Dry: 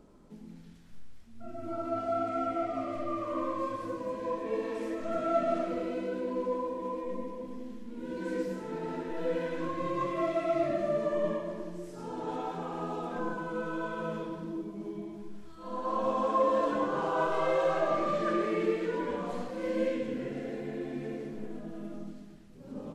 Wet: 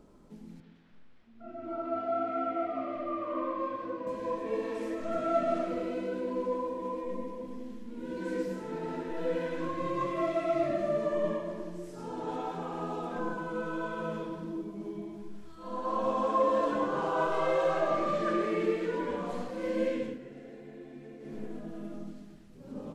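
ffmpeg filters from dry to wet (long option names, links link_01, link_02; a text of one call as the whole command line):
ffmpeg -i in.wav -filter_complex "[0:a]asettb=1/sr,asplit=3[link_01][link_02][link_03];[link_01]atrim=end=0.604[link_04];[link_02]atrim=start=0.6:end=4.07,asetpts=PTS-STARTPTS,afade=type=in:duration=0.004:curve=qsin,afade=type=out:start_time=3.466:duration=0.004:curve=qsin,acrossover=split=180 3900:gain=0.224 1 0.0708[link_05][link_06][link_07];[link_05][link_06][link_07]amix=inputs=3:normalize=0[link_08];[link_03]atrim=start=4.066[link_09];[link_04][link_08]acrossfade=duration=0.004:curve1=hsin:curve2=qsin[link_10];[link_10][link_09]acrossfade=duration=0.004:curve1=qsin:curve2=hsin,asplit=3[link_11][link_12][link_13];[link_11]atrim=end=20.19,asetpts=PTS-STARTPTS,afade=type=out:start_time=20.04:duration=0.15:silence=0.316228[link_14];[link_12]atrim=start=20.19:end=21.2,asetpts=PTS-STARTPTS,volume=-10dB[link_15];[link_13]atrim=start=21.2,asetpts=PTS-STARTPTS,afade=type=in:duration=0.15:silence=0.316228[link_16];[link_14][link_15][link_16]concat=n=3:v=0:a=1" out.wav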